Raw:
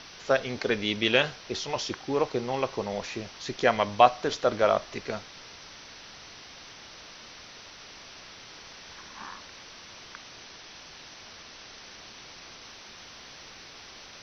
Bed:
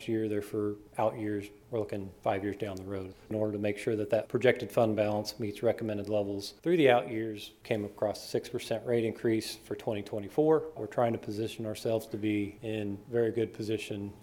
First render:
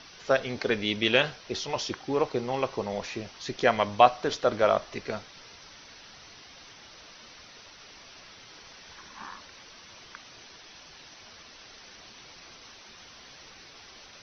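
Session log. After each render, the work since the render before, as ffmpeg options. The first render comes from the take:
ffmpeg -i in.wav -af "afftdn=noise_reduction=6:noise_floor=-48" out.wav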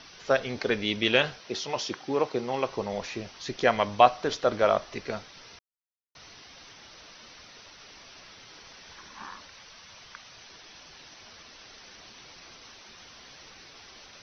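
ffmpeg -i in.wav -filter_complex "[0:a]asettb=1/sr,asplit=3[link_01][link_02][link_03];[link_01]atrim=end=1.394[link_04];[link_02]atrim=start=1.39:end=2.68,asetpts=PTS-STARTPTS,afade=type=in:duration=0.004:curve=qsin,afade=type=out:start_time=1.286:duration=0.004:curve=qsin,highpass=130[link_05];[link_03]atrim=start=2.676[link_06];[link_04][link_05]acrossfade=duration=0.004:curve1=hsin:curve2=qsin[link_07];[link_07][link_06]acrossfade=duration=0.004:curve1=qsin:curve2=hsin,asettb=1/sr,asplit=3[link_08][link_09][link_10];[link_08]atrim=end=9.474[link_11];[link_09]atrim=start=9.47:end=10.49,asetpts=PTS-STARTPTS,afade=type=in:duration=0.004:curve=qsin,afade=type=out:start_time=1.016:duration=0.004:curve=qsin,equalizer=frequency=320:width=1.5:gain=-7.5[link_12];[link_10]atrim=start=10.486[link_13];[link_11][link_12]acrossfade=duration=0.004:curve1=hsin:curve2=qsin[link_14];[link_14][link_13]acrossfade=duration=0.004:curve1=qsin:curve2=hsin,asplit=3[link_15][link_16][link_17];[link_15]atrim=end=5.59,asetpts=PTS-STARTPTS,afade=type=out:start_time=5.586:duration=0.004:curve=hsin[link_18];[link_16]atrim=start=5.59:end=6.15,asetpts=PTS-STARTPTS,volume=0[link_19];[link_17]atrim=start=6.15,asetpts=PTS-STARTPTS,afade=type=in:duration=0.004:curve=hsin[link_20];[link_18][link_19][link_20]concat=n=3:v=0:a=1" out.wav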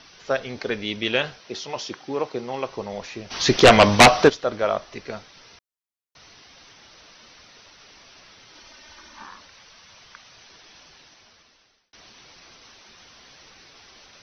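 ffmpeg -i in.wav -filter_complex "[0:a]asplit=3[link_01][link_02][link_03];[link_01]afade=type=out:start_time=3.3:duration=0.02[link_04];[link_02]aeval=exprs='0.596*sin(PI/2*4.47*val(0)/0.596)':channel_layout=same,afade=type=in:start_time=3.3:duration=0.02,afade=type=out:start_time=4.28:duration=0.02[link_05];[link_03]afade=type=in:start_time=4.28:duration=0.02[link_06];[link_04][link_05][link_06]amix=inputs=3:normalize=0,asettb=1/sr,asplit=3[link_07][link_08][link_09];[link_07]atrim=end=8.554[link_10];[link_08]atrim=start=8.55:end=9.23,asetpts=PTS-STARTPTS,afade=type=in:duration=0.004:curve=qsin,afade=type=out:start_time=0.676:duration=0.004:curve=qsin,aecho=1:1:3.3:0.65,atrim=end_sample=29988[link_11];[link_09]atrim=start=9.226[link_12];[link_10][link_11]acrossfade=duration=0.004:curve1=hsin:curve2=qsin[link_13];[link_13][link_12]acrossfade=duration=0.004:curve1=qsin:curve2=hsin,asplit=2[link_14][link_15];[link_14]atrim=end=11.93,asetpts=PTS-STARTPTS,afade=type=out:start_time=10.82:duration=1.11[link_16];[link_15]atrim=start=11.93,asetpts=PTS-STARTPTS,afade=type=in:duration=0.004:curve=hsin[link_17];[link_16][link_17]concat=n=2:v=0:a=1" out.wav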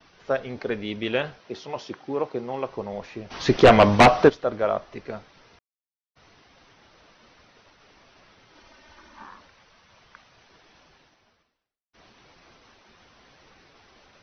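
ffmpeg -i in.wav -af "lowpass=frequency=1400:poles=1,agate=range=-33dB:threshold=-53dB:ratio=3:detection=peak" out.wav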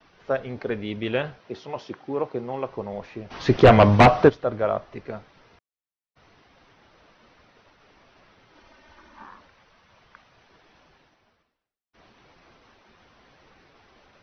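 ffmpeg -i in.wav -af "lowpass=frequency=3000:poles=1,adynamicequalizer=threshold=0.01:dfrequency=110:dqfactor=1.5:tfrequency=110:tqfactor=1.5:attack=5:release=100:ratio=0.375:range=3.5:mode=boostabove:tftype=bell" out.wav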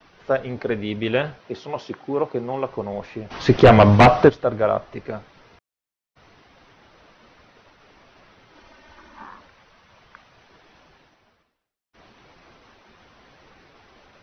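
ffmpeg -i in.wav -af "volume=4dB,alimiter=limit=-2dB:level=0:latency=1" out.wav

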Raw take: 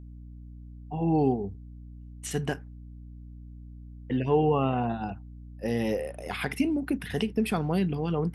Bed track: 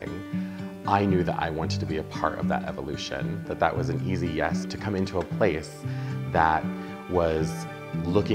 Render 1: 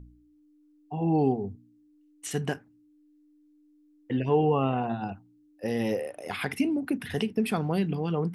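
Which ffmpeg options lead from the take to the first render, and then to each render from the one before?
ffmpeg -i in.wav -af "bandreject=frequency=60:width_type=h:width=4,bandreject=frequency=120:width_type=h:width=4,bandreject=frequency=180:width_type=h:width=4,bandreject=frequency=240:width_type=h:width=4" out.wav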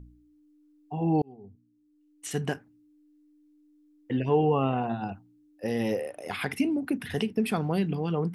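ffmpeg -i in.wav -filter_complex "[0:a]asplit=2[link_01][link_02];[link_01]atrim=end=1.22,asetpts=PTS-STARTPTS,afade=type=out:start_time=1.216:duration=0.004:curve=hsin[link_03];[link_02]atrim=start=1.22,asetpts=PTS-STARTPTS,afade=type=in:duration=1.18[link_04];[link_03][link_04]concat=n=2:v=0:a=1" out.wav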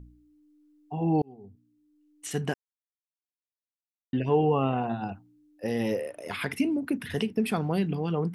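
ffmpeg -i in.wav -filter_complex "[0:a]asettb=1/sr,asplit=3[link_01][link_02][link_03];[link_01]atrim=end=5.864[link_04];[link_02]atrim=start=5.86:end=7.23,asetpts=PTS-STARTPTS,afade=type=in:duration=0.004:curve=qsin,afade=type=out:start_time=1.366:duration=0.004:curve=qsin,asuperstop=centerf=770:order=4:qfactor=7.2[link_05];[link_03]atrim=start=7.226[link_06];[link_04][link_05]acrossfade=duration=0.004:curve1=hsin:curve2=qsin[link_07];[link_07][link_06]acrossfade=duration=0.004:curve1=qsin:curve2=hsin,asplit=3[link_08][link_09][link_10];[link_08]atrim=end=2.54,asetpts=PTS-STARTPTS,afade=type=out:start_time=2.536:duration=0.004:curve=hsin[link_11];[link_09]atrim=start=2.54:end=4.13,asetpts=PTS-STARTPTS,volume=0[link_12];[link_10]atrim=start=4.13,asetpts=PTS-STARTPTS,afade=type=in:duration=0.004:curve=hsin[link_13];[link_11][link_12][link_13]concat=n=3:v=0:a=1" out.wav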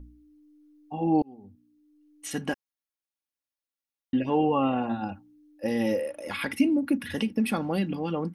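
ffmpeg -i in.wav -af "bandreject=frequency=7500:width=8.4,aecho=1:1:3.6:0.63" out.wav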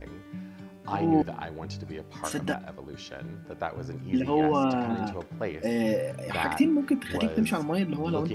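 ffmpeg -i in.wav -i bed.wav -filter_complex "[1:a]volume=-9.5dB[link_01];[0:a][link_01]amix=inputs=2:normalize=0" out.wav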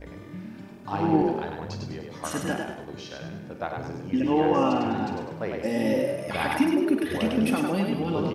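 ffmpeg -i in.wav -filter_complex "[0:a]asplit=2[link_01][link_02];[link_02]adelay=50,volume=-10.5dB[link_03];[link_01][link_03]amix=inputs=2:normalize=0,asplit=2[link_04][link_05];[link_05]asplit=5[link_06][link_07][link_08][link_09][link_10];[link_06]adelay=101,afreqshift=38,volume=-4dB[link_11];[link_07]adelay=202,afreqshift=76,volume=-11.3dB[link_12];[link_08]adelay=303,afreqshift=114,volume=-18.7dB[link_13];[link_09]adelay=404,afreqshift=152,volume=-26dB[link_14];[link_10]adelay=505,afreqshift=190,volume=-33.3dB[link_15];[link_11][link_12][link_13][link_14][link_15]amix=inputs=5:normalize=0[link_16];[link_04][link_16]amix=inputs=2:normalize=0" out.wav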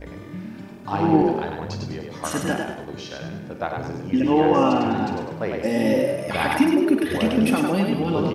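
ffmpeg -i in.wav -af "volume=4.5dB" out.wav

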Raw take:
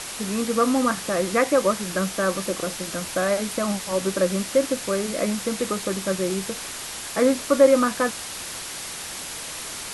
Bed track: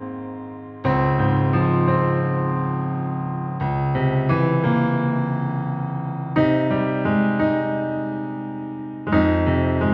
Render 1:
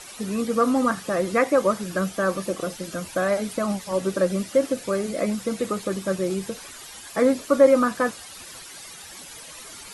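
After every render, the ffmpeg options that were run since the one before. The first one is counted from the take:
ffmpeg -i in.wav -af "afftdn=noise_reduction=12:noise_floor=-34" out.wav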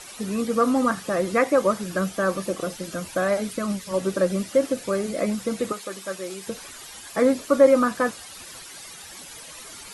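ffmpeg -i in.wav -filter_complex "[0:a]asettb=1/sr,asplit=3[link_01][link_02][link_03];[link_01]atrim=end=3.504[link_04];[link_02]atrim=start=3.5:end=3.94,asetpts=PTS-STARTPTS,afade=type=in:duration=0.004:curve=qsin,afade=type=out:start_time=0.436:duration=0.004:curve=qsin,equalizer=frequency=770:width_type=o:width=0.55:gain=-13[link_05];[link_03]atrim=start=3.936[link_06];[link_04][link_05]acrossfade=duration=0.004:curve1=hsin:curve2=qsin[link_07];[link_07][link_06]acrossfade=duration=0.004:curve1=qsin:curve2=hsin,asettb=1/sr,asplit=3[link_08][link_09][link_10];[link_08]atrim=end=5.724[link_11];[link_09]atrim=start=5.72:end=6.47,asetpts=PTS-STARTPTS,afade=type=in:duration=0.004:curve=qsin,afade=type=out:start_time=0.746:duration=0.004:curve=qsin,highpass=frequency=930:poles=1[link_12];[link_10]atrim=start=6.466[link_13];[link_11][link_12]acrossfade=duration=0.004:curve1=hsin:curve2=qsin[link_14];[link_14][link_13]acrossfade=duration=0.004:curve1=qsin:curve2=hsin" out.wav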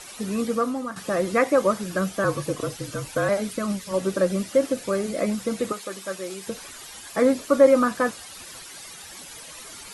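ffmpeg -i in.wav -filter_complex "[0:a]asettb=1/sr,asplit=3[link_01][link_02][link_03];[link_01]atrim=end=2.244[link_04];[link_02]atrim=start=2.24:end=3.29,asetpts=PTS-STARTPTS,afade=type=in:duration=0.004:curve=qsin,afade=type=out:start_time=1.046:duration=0.004:curve=qsin,afreqshift=-45[link_05];[link_03]atrim=start=3.286[link_06];[link_04][link_05]acrossfade=duration=0.004:curve1=hsin:curve2=qsin[link_07];[link_07][link_06]acrossfade=duration=0.004:curve1=qsin:curve2=hsin,asplit=2[link_08][link_09];[link_08]atrim=end=0.96,asetpts=PTS-STARTPTS,afade=type=out:start_time=0.49:duration=0.47:curve=qua:silence=0.281838[link_10];[link_09]atrim=start=0.96,asetpts=PTS-STARTPTS,afade=type=in:duration=0.004:curve=hsin:silence=0.281838[link_11];[link_10][link_11]concat=n=2:v=0:a=1" out.wav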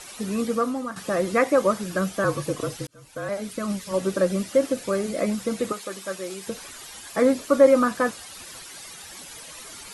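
ffmpeg -i in.wav -filter_complex "[0:a]asplit=2[link_01][link_02];[link_01]atrim=end=2.87,asetpts=PTS-STARTPTS,afade=type=out:start_time=2.866:duration=0.004:curve=hsin[link_03];[link_02]atrim=start=2.87,asetpts=PTS-STARTPTS,afade=type=in:duration=0.92[link_04];[link_03][link_04]concat=n=2:v=0:a=1" out.wav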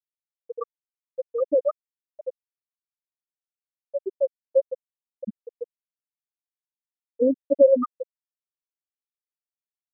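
ffmpeg -i in.wav -af "lowpass=frequency=3700:width=0.5412,lowpass=frequency=3700:width=1.3066,afftfilt=real='re*gte(hypot(re,im),0.891)':imag='im*gte(hypot(re,im),0.891)':win_size=1024:overlap=0.75" out.wav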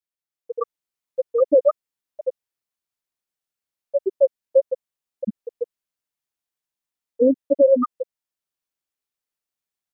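ffmpeg -i in.wav -af "dynaudnorm=framelen=320:gausssize=3:maxgain=7dB,alimiter=limit=-7.5dB:level=0:latency=1:release=84" out.wav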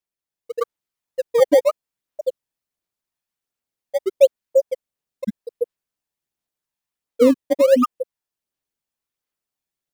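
ffmpeg -i in.wav -filter_complex "[0:a]aphaser=in_gain=1:out_gain=1:delay=1.2:decay=0.27:speed=1.4:type=sinusoidal,asplit=2[link_01][link_02];[link_02]acrusher=samples=19:mix=1:aa=0.000001:lfo=1:lforange=30.4:lforate=0.84,volume=-12dB[link_03];[link_01][link_03]amix=inputs=2:normalize=0" out.wav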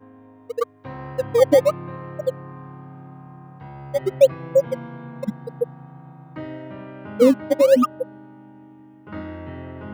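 ffmpeg -i in.wav -i bed.wav -filter_complex "[1:a]volume=-16dB[link_01];[0:a][link_01]amix=inputs=2:normalize=0" out.wav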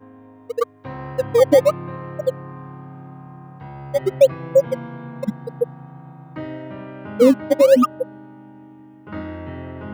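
ffmpeg -i in.wav -af "volume=2.5dB,alimiter=limit=-3dB:level=0:latency=1" out.wav

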